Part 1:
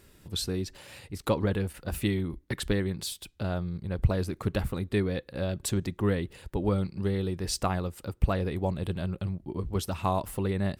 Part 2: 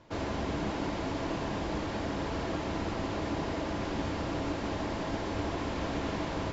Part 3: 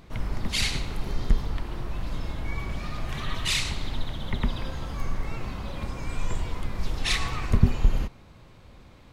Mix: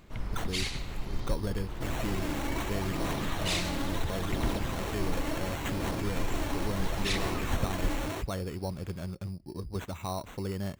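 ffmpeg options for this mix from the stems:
ffmpeg -i stem1.wav -i stem2.wav -i stem3.wav -filter_complex "[0:a]volume=-5.5dB[link_01];[1:a]highpass=frequency=82:width=0.5412,highpass=frequency=82:width=1.3066,highshelf=frequency=2800:gain=11,aphaser=in_gain=1:out_gain=1:delay=3.6:decay=0.54:speed=0.72:type=sinusoidal,adelay=1700,volume=-4dB[link_02];[2:a]alimiter=limit=-14dB:level=0:latency=1:release=386,volume=-5.5dB[link_03];[link_01][link_02]amix=inputs=2:normalize=0,acrusher=samples=9:mix=1:aa=0.000001,alimiter=level_in=1dB:limit=-24dB:level=0:latency=1:release=40,volume=-1dB,volume=0dB[link_04];[link_03][link_04]amix=inputs=2:normalize=0" out.wav

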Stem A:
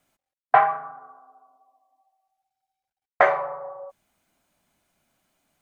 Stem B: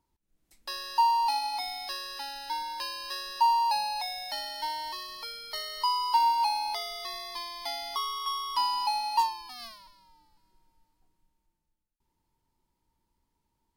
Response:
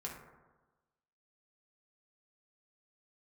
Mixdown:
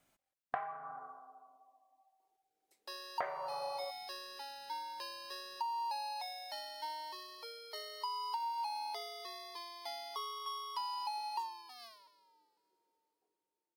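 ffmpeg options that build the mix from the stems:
-filter_complex "[0:a]volume=-3.5dB[link_01];[1:a]highpass=frequency=430:width_type=q:width=4.9,adelay=2200,volume=-10.5dB[link_02];[link_01][link_02]amix=inputs=2:normalize=0,acompressor=threshold=-35dB:ratio=16"

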